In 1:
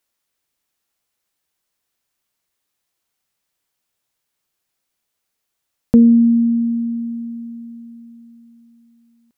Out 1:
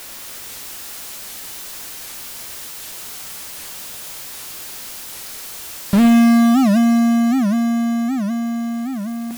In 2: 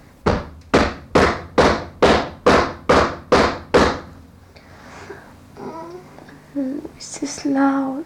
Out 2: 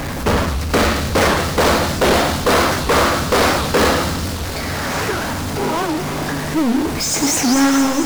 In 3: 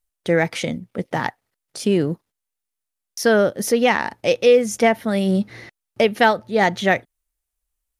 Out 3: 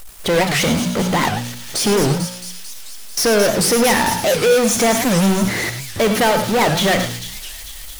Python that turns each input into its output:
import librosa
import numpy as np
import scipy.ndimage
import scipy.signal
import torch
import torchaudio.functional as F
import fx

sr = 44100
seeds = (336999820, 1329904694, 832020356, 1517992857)

p1 = fx.hum_notches(x, sr, base_hz=60, count=4)
p2 = (np.mod(10.0 ** (17.5 / 20.0) * p1 + 1.0, 2.0) - 1.0) / 10.0 ** (17.5 / 20.0)
p3 = p1 + (p2 * 10.0 ** (-7.5 / 20.0))
p4 = fx.power_curve(p3, sr, exponent=0.35)
p5 = p4 + fx.echo_wet_highpass(p4, sr, ms=222, feedback_pct=71, hz=3800.0, wet_db=-5.5, dry=0)
p6 = fx.rev_gated(p5, sr, seeds[0], gate_ms=130, shape='rising', drr_db=6.5)
p7 = fx.record_warp(p6, sr, rpm=78.0, depth_cents=250.0)
y = p7 * 10.0 ** (-6.5 / 20.0)